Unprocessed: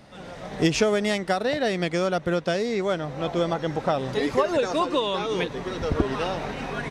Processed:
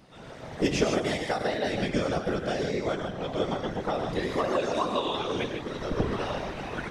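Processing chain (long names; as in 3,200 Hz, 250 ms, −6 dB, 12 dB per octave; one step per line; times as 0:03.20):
reverb whose tail is shaped and stops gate 170 ms rising, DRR 4 dB
random phases in short frames
level −5.5 dB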